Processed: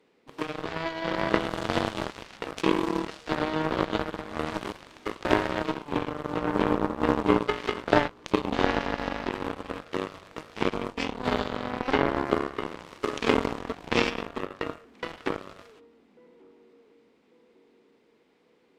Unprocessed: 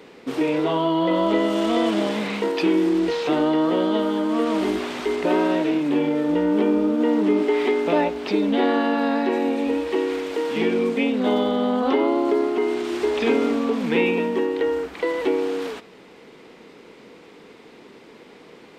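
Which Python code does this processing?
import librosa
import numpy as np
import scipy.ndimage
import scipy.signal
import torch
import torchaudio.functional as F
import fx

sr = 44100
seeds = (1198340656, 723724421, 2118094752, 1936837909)

y = fx.echo_filtered(x, sr, ms=1144, feedback_pct=48, hz=910.0, wet_db=-12.0)
y = fx.cheby_harmonics(y, sr, harmonics=(3,), levels_db=(-9,), full_scale_db=-8.0)
y = y * 10.0 ** (4.0 / 20.0)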